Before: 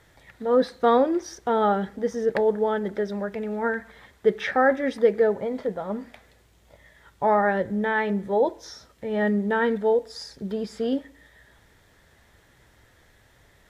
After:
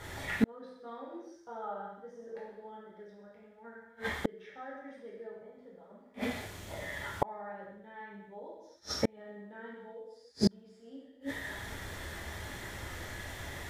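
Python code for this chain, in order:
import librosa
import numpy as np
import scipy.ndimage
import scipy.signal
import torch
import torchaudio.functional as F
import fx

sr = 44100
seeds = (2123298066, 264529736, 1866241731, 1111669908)

p1 = fx.spec_box(x, sr, start_s=1.29, length_s=1.05, low_hz=450.0, high_hz=1600.0, gain_db=8)
p2 = fx.level_steps(p1, sr, step_db=12)
p3 = p1 + F.gain(torch.from_numpy(p2), 0.5).numpy()
p4 = fx.rev_gated(p3, sr, seeds[0], gate_ms=340, shape='falling', drr_db=-7.0)
p5 = fx.gate_flip(p4, sr, shuts_db=-16.0, range_db=-38)
y = F.gain(torch.from_numpy(p5), 2.5).numpy()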